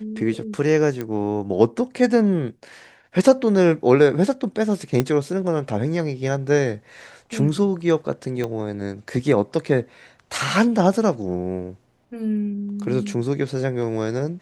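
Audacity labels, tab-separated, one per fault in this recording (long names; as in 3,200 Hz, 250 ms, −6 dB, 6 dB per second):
1.010000	1.010000	click −15 dBFS
5.000000	5.000000	click −6 dBFS
8.440000	8.440000	click −14 dBFS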